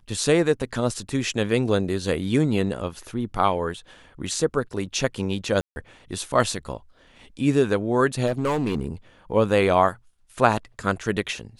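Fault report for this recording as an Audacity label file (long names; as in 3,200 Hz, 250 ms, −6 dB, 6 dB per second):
5.610000	5.760000	drop-out 151 ms
8.260000	8.870000	clipping −19 dBFS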